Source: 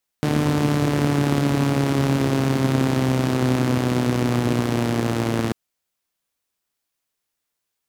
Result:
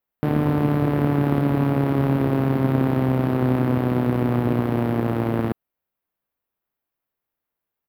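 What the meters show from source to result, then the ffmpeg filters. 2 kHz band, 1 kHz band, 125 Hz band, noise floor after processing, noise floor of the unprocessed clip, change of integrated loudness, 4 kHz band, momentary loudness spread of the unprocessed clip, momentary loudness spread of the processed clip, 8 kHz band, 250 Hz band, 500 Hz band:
−4.5 dB, −0.5 dB, 0.0 dB, −85 dBFS, −80 dBFS, −0.5 dB, −12.0 dB, 3 LU, 3 LU, below −15 dB, 0.0 dB, 0.0 dB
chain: -af "firequalizer=gain_entry='entry(770,0);entry(6700,-26);entry(13000,-3)':delay=0.05:min_phase=1"

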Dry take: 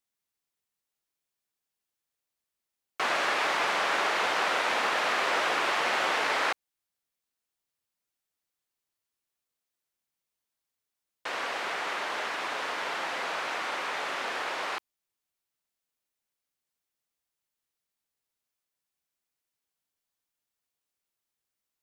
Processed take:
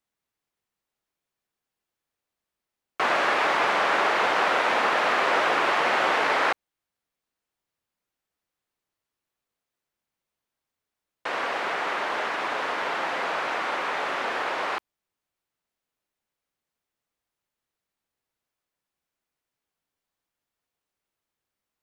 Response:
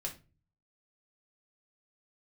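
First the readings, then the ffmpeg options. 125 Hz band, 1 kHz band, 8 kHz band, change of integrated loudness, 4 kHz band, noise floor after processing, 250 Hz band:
can't be measured, +5.5 dB, −2.0 dB, +4.5 dB, +1.0 dB, below −85 dBFS, +6.5 dB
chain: -af "highshelf=frequency=3200:gain=-10.5,volume=6.5dB"

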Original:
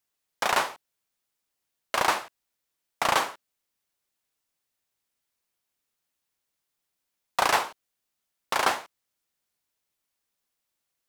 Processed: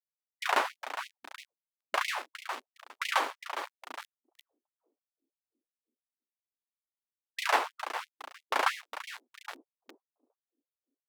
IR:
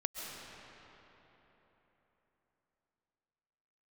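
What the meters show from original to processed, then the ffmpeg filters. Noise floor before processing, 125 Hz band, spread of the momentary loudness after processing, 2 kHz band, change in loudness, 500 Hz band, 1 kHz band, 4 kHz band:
−82 dBFS, below −35 dB, 18 LU, −3.0 dB, −6.5 dB, −5.5 dB, −4.5 dB, −5.0 dB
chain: -filter_complex "[0:a]asplit=5[link_01][link_02][link_03][link_04][link_05];[link_02]adelay=409,afreqshift=42,volume=-11dB[link_06];[link_03]adelay=818,afreqshift=84,volume=-19.4dB[link_07];[link_04]adelay=1227,afreqshift=126,volume=-27.8dB[link_08];[link_05]adelay=1636,afreqshift=168,volume=-36.2dB[link_09];[link_01][link_06][link_07][link_08][link_09]amix=inputs=5:normalize=0,agate=range=-26dB:threshold=-50dB:ratio=16:detection=peak,acrossover=split=220[link_10][link_11];[link_10]highpass=140[link_12];[link_11]aeval=exprs='sgn(val(0))*max(abs(val(0))-0.01,0)':channel_layout=same[link_13];[link_12][link_13]amix=inputs=2:normalize=0,bass=frequency=250:gain=7,treble=frequency=4000:gain=-8,areverse,acompressor=mode=upward:threshold=-28dB:ratio=2.5,areverse,afftfilt=real='re*gte(b*sr/1024,220*pow(2000/220,0.5+0.5*sin(2*PI*3*pts/sr)))':imag='im*gte(b*sr/1024,220*pow(2000/220,0.5+0.5*sin(2*PI*3*pts/sr)))':win_size=1024:overlap=0.75,volume=-1.5dB"

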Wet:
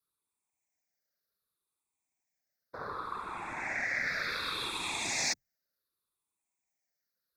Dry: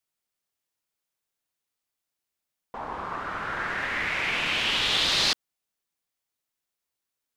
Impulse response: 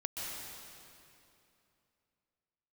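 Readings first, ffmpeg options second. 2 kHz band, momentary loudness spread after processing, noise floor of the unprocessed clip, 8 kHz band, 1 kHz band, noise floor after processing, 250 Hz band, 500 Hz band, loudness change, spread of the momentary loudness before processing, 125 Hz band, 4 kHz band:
−6.5 dB, 9 LU, below −85 dBFS, −0.5 dB, −6.5 dB, below −85 dBFS, −7.5 dB, −7.5 dB, −8.5 dB, 14 LU, −9.0 dB, −12.5 dB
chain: -filter_complex "[0:a]afftfilt=real='re*pow(10,15/40*sin(2*PI*(0.62*log(max(b,1)*sr/1024/100)/log(2)-(-0.67)*(pts-256)/sr)))':imag='im*pow(10,15/40*sin(2*PI*(0.62*log(max(b,1)*sr/1024/100)/log(2)-(-0.67)*(pts-256)/sr)))':win_size=1024:overlap=0.75,acrossover=split=110|1900|5800[link_01][link_02][link_03][link_04];[link_01]acompressor=threshold=-53dB:ratio=4[link_05];[link_02]acompressor=threshold=-34dB:ratio=4[link_06];[link_03]acompressor=threshold=-28dB:ratio=4[link_07];[link_05][link_06][link_07][link_04]amix=inputs=4:normalize=0,afreqshift=25,afftfilt=real='hypot(re,im)*cos(2*PI*random(0))':imag='hypot(re,im)*sin(2*PI*random(1))':win_size=512:overlap=0.75,asuperstop=centerf=3000:order=4:qfactor=3,volume=1.5dB"

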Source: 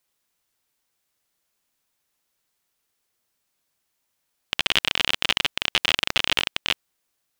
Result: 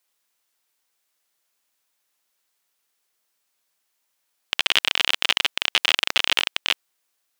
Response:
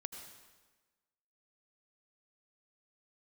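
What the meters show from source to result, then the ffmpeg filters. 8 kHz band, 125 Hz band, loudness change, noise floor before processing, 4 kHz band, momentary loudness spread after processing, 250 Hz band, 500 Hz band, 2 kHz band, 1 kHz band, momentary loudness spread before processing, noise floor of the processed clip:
+2.0 dB, below −10 dB, +2.0 dB, −76 dBFS, +2.0 dB, 5 LU, −5.0 dB, −1.0 dB, +2.0 dB, +1.0 dB, 5 LU, −74 dBFS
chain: -af "highpass=frequency=520:poles=1,volume=2dB"

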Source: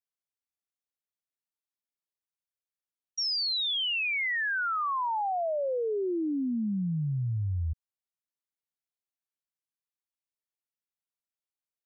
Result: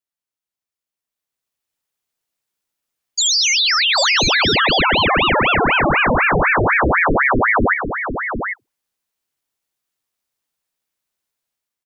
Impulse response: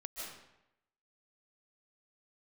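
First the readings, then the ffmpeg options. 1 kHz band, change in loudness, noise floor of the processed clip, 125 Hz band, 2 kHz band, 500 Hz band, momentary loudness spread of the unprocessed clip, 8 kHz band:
+15.5 dB, +14.5 dB, below −85 dBFS, +7.5 dB, +17.5 dB, +13.0 dB, 5 LU, can't be measured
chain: -af "dynaudnorm=framelen=880:gausssize=3:maxgain=10.5dB,aecho=1:1:154|797:0.188|0.447,afreqshift=18,aeval=exprs='val(0)*sin(2*PI*1100*n/s+1100*0.9/4*sin(2*PI*4*n/s))':channel_layout=same,volume=6dB"

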